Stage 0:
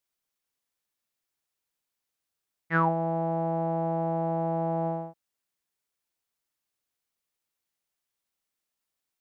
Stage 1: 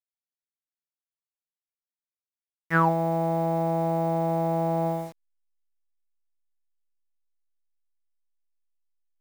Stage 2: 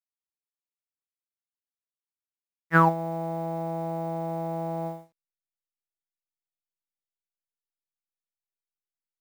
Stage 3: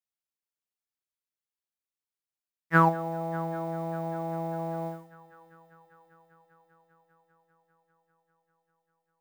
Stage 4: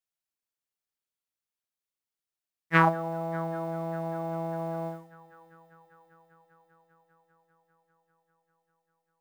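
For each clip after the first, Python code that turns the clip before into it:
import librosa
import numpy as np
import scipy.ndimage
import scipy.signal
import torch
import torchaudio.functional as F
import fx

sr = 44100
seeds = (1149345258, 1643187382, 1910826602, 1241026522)

y1 = fx.delta_hold(x, sr, step_db=-46.0)
y1 = F.gain(torch.from_numpy(y1), 3.0).numpy()
y2 = fx.upward_expand(y1, sr, threshold_db=-39.0, expansion=2.5)
y2 = F.gain(torch.from_numpy(y2), 3.5).numpy()
y3 = fx.echo_heads(y2, sr, ms=198, heads='first and third', feedback_pct=73, wet_db=-22.0)
y3 = F.gain(torch.from_numpy(y3), -1.5).numpy()
y4 = fx.doppler_dist(y3, sr, depth_ms=0.34)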